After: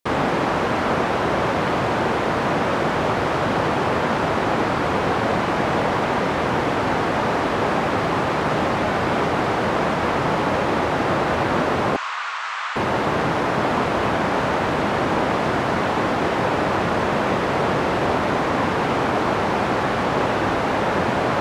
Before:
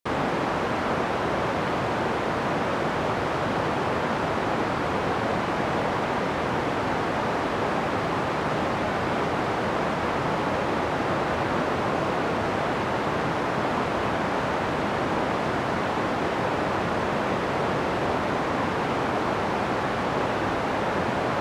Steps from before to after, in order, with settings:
0:11.96–0:12.76: elliptic band-pass filter 1,100–7,700 Hz, stop band 80 dB
level +5 dB

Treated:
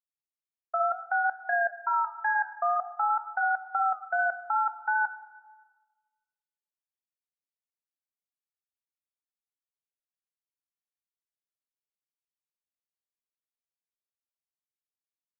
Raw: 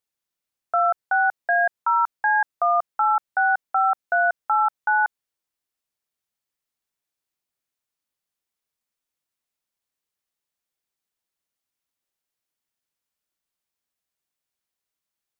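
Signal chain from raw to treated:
0:01.75–0:03.61: Butterworth high-pass 400 Hz 48 dB per octave
output level in coarse steps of 21 dB
flanger 0.6 Hz, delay 5.3 ms, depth 5.9 ms, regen −79%
tape wow and flutter 28 cents
on a send: convolution reverb RT60 1.3 s, pre-delay 91 ms, DRR 15.5 dB

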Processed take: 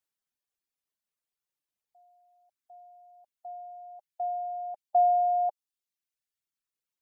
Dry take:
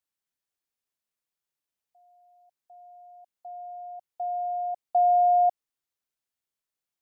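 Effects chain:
reverb reduction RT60 1.6 s

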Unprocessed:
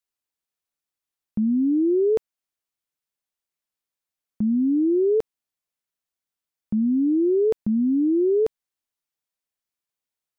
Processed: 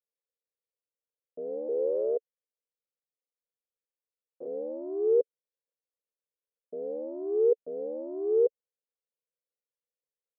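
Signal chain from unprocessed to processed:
0:01.68–0:04.47: sub-harmonics by changed cycles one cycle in 2, muted
asymmetric clip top −25.5 dBFS, bottom −19 dBFS
ring modulation 38 Hz
flat-topped band-pass 490 Hz, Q 4.2
level +8 dB

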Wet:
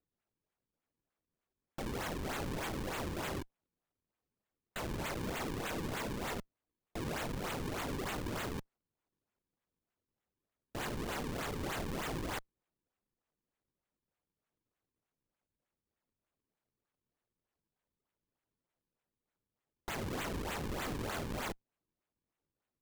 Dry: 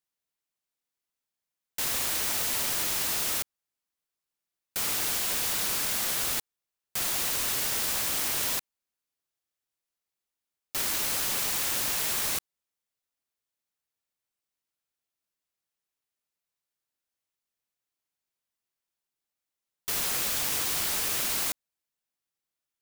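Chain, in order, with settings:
tube saturation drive 38 dB, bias 0.8
sample-and-hold swept by an LFO 38×, swing 160% 3.3 Hz
level +1.5 dB

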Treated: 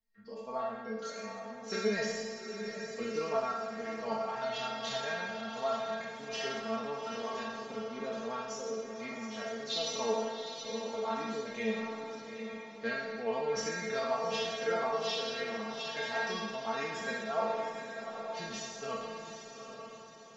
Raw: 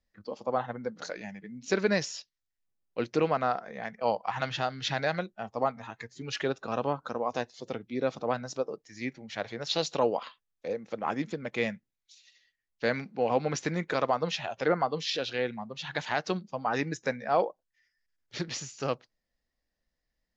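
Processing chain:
peak hold with a decay on every bin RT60 1.40 s
stiff-string resonator 220 Hz, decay 0.22 s, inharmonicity 0.002
feedback delay with all-pass diffusion 806 ms, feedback 44%, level −7.5 dB
level +3 dB

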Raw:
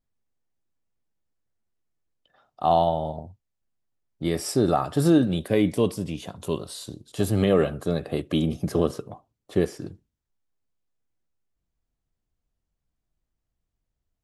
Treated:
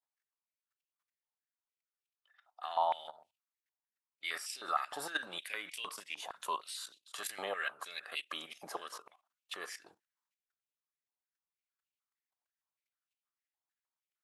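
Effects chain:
output level in coarse steps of 15 dB
high-pass on a step sequencer 6.5 Hz 860–2,700 Hz

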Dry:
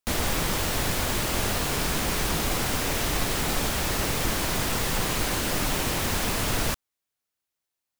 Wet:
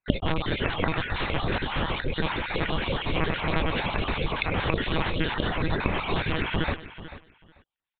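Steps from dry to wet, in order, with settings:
time-frequency cells dropped at random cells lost 39%
one-pitch LPC vocoder at 8 kHz 160 Hz
repeating echo 440 ms, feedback 18%, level −14.5 dB
level +2 dB

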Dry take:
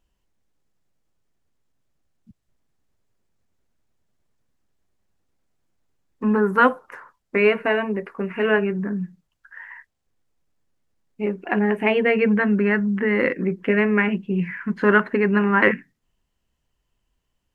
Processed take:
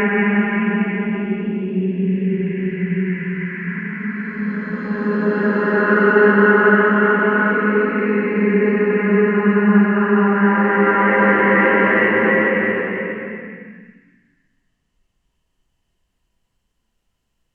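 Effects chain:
treble cut that deepens with the level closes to 2,400 Hz, closed at −18 dBFS
extreme stretch with random phases 7.3×, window 0.50 s, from 0:14.03
level +4 dB

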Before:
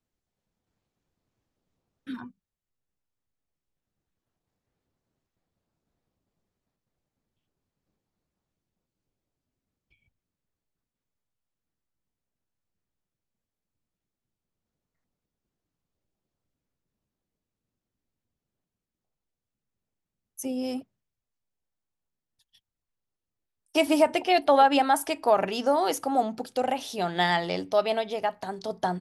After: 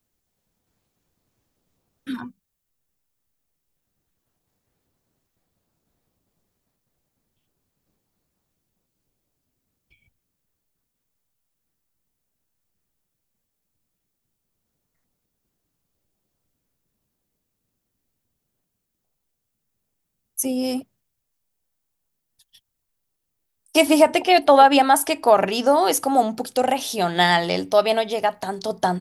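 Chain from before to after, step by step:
high-shelf EQ 7,700 Hz +11.5 dB, from 0:23.83 +5.5 dB, from 0:25.95 +10.5 dB
level +6.5 dB

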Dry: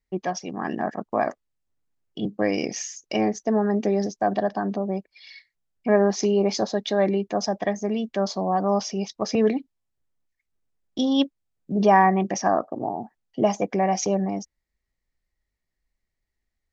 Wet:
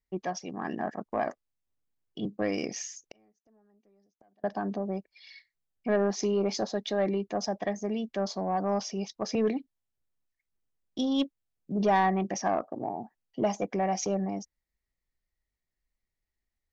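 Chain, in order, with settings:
soft clipping −11 dBFS, distortion −19 dB
0:03.03–0:04.44: gate with flip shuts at −26 dBFS, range −37 dB
level −5.5 dB

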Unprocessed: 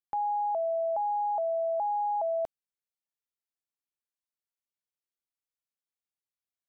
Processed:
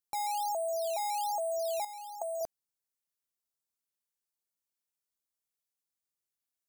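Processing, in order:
0:01.84–0:02.41: comb filter 5.5 ms, depth 83%
in parallel at −6.5 dB: sample-and-hold swept by an LFO 10×, swing 100% 1.2 Hz
on the sum: bass and treble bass 0 dB, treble +12 dB
level −7 dB

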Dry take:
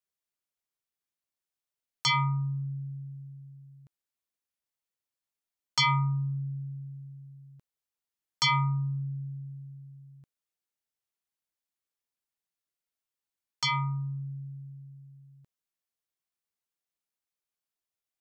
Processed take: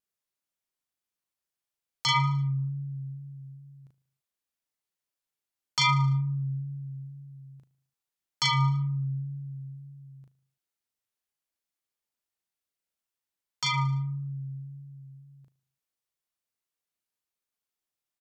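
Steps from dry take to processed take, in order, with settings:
tape wow and flutter 29 cents
double-tracking delay 37 ms −2.5 dB
on a send: repeating echo 75 ms, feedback 50%, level −18 dB
on the sum: level −1 dB

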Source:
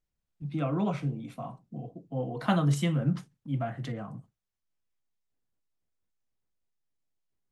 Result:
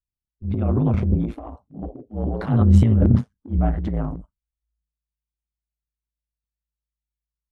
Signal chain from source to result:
ring modulation 55 Hz
noise reduction from a noise print of the clip's start 28 dB
spectral tilt −4.5 dB per octave
transient designer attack −8 dB, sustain +11 dB
level +1.5 dB

